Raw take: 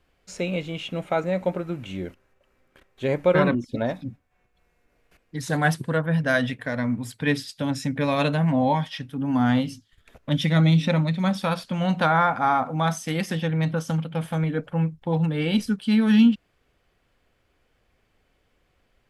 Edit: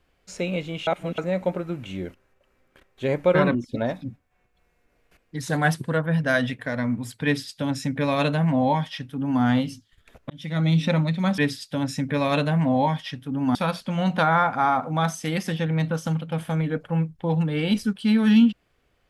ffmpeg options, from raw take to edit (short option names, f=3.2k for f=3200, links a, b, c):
-filter_complex "[0:a]asplit=6[a][b][c][d][e][f];[a]atrim=end=0.872[g];[b]atrim=start=0.868:end=1.182,asetpts=PTS-STARTPTS,areverse[h];[c]atrim=start=1.178:end=10.3,asetpts=PTS-STARTPTS,afade=t=out:st=9.118:d=0.004:c=hsin[i];[d]atrim=start=10.3:end=11.382,asetpts=PTS-STARTPTS,afade=t=in:d=0.53[j];[e]atrim=start=7.248:end=9.422[k];[f]atrim=start=11.378[l];[g][h]acrossfade=d=0.004:c1=hsin:c2=hsin[m];[i][j]concat=n=2:v=0:a=1[n];[m][n]acrossfade=d=0.004:c1=hsin:c2=hsin[o];[o][k]acrossfade=d=0.004:c1=hsin:c2=hsin[p];[p][l]acrossfade=d=0.004:c1=hsin:c2=hsin"